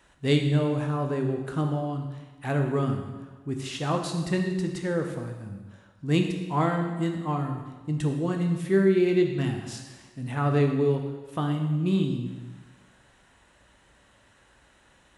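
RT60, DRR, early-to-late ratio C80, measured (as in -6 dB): 1.3 s, 3.0 dB, 7.5 dB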